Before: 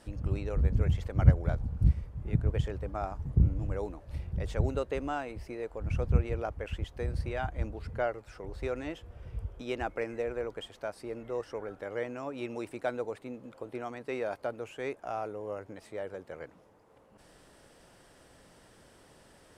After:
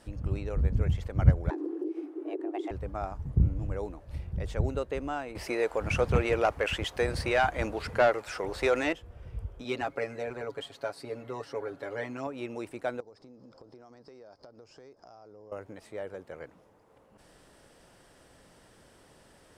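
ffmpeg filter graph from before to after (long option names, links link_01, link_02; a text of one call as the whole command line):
ffmpeg -i in.wav -filter_complex "[0:a]asettb=1/sr,asplit=3[link_01][link_02][link_03];[link_01]atrim=end=1.504[link_04];[link_02]atrim=start=1.5:end=2.71,asetpts=PTS-STARTPTS,afade=type=in:duration=0.004:curve=qsin,afade=type=out:start_time=1.206:duration=0.004:curve=qsin,highshelf=frequency=4900:gain=-4.5,acompressor=threshold=-29dB:ratio=16:attack=3.2:release=140:knee=1:detection=peak,afreqshift=260[link_05];[link_03]atrim=start=2.706[link_06];[link_04][link_05]acrossfade=duration=0.004:curve1=hsin:curve2=qsin[link_07];[link_07][link_06]acrossfade=duration=0.004:curve1=qsin:curve2=hsin,asettb=1/sr,asplit=3[link_08][link_09][link_10];[link_08]atrim=end=5.354[link_11];[link_09]atrim=start=5.35:end=8.93,asetpts=PTS-STARTPTS,afade=type=in:duration=0.004:curve=qsin,afade=type=out:start_time=3.576:duration=0.004:curve=qsin,aemphasis=mode=production:type=cd,asplit=2[link_12][link_13];[link_13]highpass=frequency=720:poles=1,volume=21dB,asoftclip=type=tanh:threshold=-11dB[link_14];[link_12][link_14]amix=inputs=2:normalize=0,lowpass=frequency=3700:poles=1,volume=-6dB[link_15];[link_10]atrim=start=8.926[link_16];[link_11][link_15]acrossfade=duration=0.004:curve1=hsin:curve2=qsin[link_17];[link_17][link_16]acrossfade=duration=0.004:curve1=qsin:curve2=hsin,asettb=1/sr,asplit=3[link_18][link_19][link_20];[link_18]atrim=end=9.644[link_21];[link_19]atrim=start=9.64:end=12.27,asetpts=PTS-STARTPTS,afade=type=in:duration=0.004:curve=qsin,afade=type=out:start_time=2.626:duration=0.004:curve=qsin,highpass=97,equalizer=frequency=4200:width_type=o:width=0.28:gain=9,aecho=1:1:7.2:0.84,atrim=end_sample=115983[link_22];[link_20]atrim=start=12.266[link_23];[link_21][link_22]acrossfade=duration=0.004:curve1=hsin:curve2=qsin[link_24];[link_24][link_23]acrossfade=duration=0.004:curve1=qsin:curve2=hsin,asettb=1/sr,asplit=3[link_25][link_26][link_27];[link_25]atrim=end=13.004[link_28];[link_26]atrim=start=13:end=15.52,asetpts=PTS-STARTPTS,afade=type=in:duration=0.004:curve=qsin,afade=type=out:start_time=2.516:duration=0.004:curve=qsin,acompressor=threshold=-48dB:ratio=6:attack=3.2:release=140:knee=1:detection=peak,lowpass=frequency=5100:width_type=q:width=13,equalizer=frequency=2700:width=0.98:gain=-14[link_29];[link_27]atrim=start=15.516[link_30];[link_28][link_29]acrossfade=duration=0.004:curve1=hsin:curve2=qsin[link_31];[link_31][link_30]acrossfade=duration=0.004:curve1=qsin:curve2=hsin" out.wav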